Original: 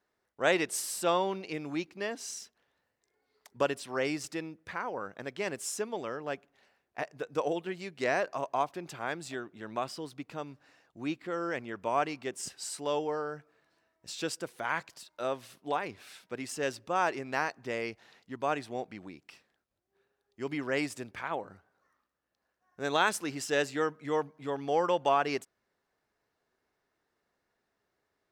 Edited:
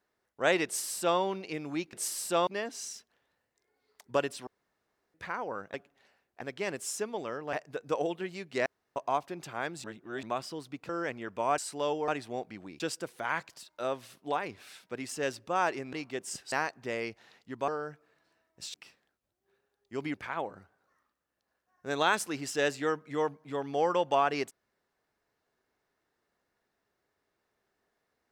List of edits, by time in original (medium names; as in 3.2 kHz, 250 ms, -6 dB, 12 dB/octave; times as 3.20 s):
0.65–1.19 s: copy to 1.93 s
3.93–4.60 s: room tone
6.32–6.99 s: move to 5.20 s
8.12–8.42 s: room tone
9.30–9.69 s: reverse
10.35–11.36 s: delete
12.05–12.64 s: move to 17.33 s
13.14–14.20 s: swap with 18.49–19.21 s
20.61–21.08 s: delete